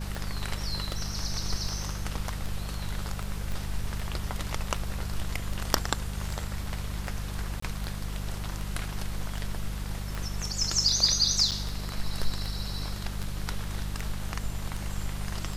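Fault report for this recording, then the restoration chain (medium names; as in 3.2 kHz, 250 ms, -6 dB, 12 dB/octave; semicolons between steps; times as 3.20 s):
hum 50 Hz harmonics 4 -35 dBFS
tick 78 rpm
3.52 s: pop
7.60–7.62 s: dropout 24 ms
11.51–11.52 s: dropout 7.2 ms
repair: de-click; de-hum 50 Hz, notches 4; interpolate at 7.60 s, 24 ms; interpolate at 11.51 s, 7.2 ms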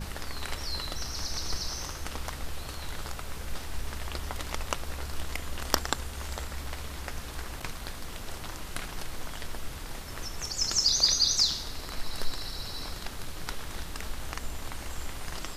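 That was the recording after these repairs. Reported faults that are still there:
3.52 s: pop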